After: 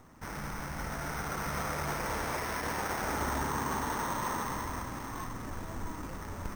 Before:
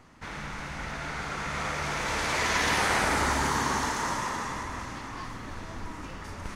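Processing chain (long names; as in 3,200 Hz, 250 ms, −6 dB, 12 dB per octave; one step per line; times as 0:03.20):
running median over 15 samples
flat-topped bell 6,800 Hz +15.5 dB
brickwall limiter −20 dBFS, peak gain reduction 11 dB
bad sample-rate conversion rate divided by 6×, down filtered, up hold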